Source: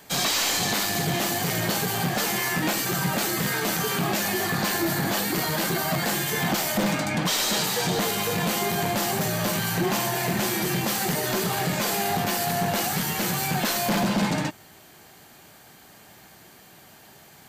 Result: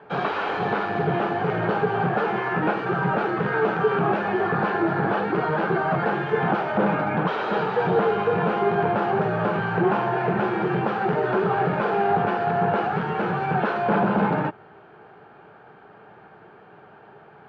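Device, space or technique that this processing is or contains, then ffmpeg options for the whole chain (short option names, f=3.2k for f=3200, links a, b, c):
bass cabinet: -af "highpass=70,equalizer=f=80:t=q:w=4:g=-9,equalizer=f=260:t=q:w=4:g=-5,equalizer=f=430:t=q:w=4:g=10,equalizer=f=840:t=q:w=4:g=5,equalizer=f=1.4k:t=q:w=4:g=7,equalizer=f=2k:t=q:w=4:g=-9,lowpass=f=2.2k:w=0.5412,lowpass=f=2.2k:w=1.3066,volume=2dB"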